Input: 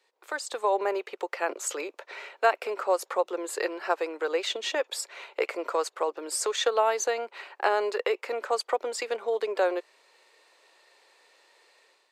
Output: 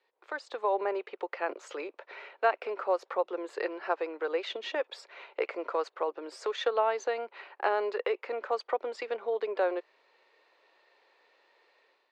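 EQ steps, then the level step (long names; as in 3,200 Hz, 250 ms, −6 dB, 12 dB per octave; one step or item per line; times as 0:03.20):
high-frequency loss of the air 220 metres
−2.5 dB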